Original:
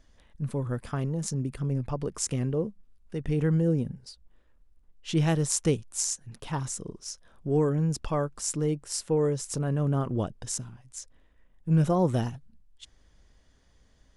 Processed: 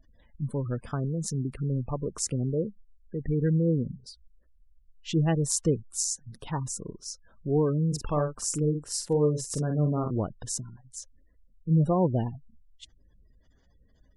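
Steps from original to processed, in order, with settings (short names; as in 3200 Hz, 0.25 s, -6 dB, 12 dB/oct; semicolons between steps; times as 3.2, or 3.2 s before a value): spectral gate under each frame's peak -25 dB strong; 7.87–10.11 doubler 47 ms -6.5 dB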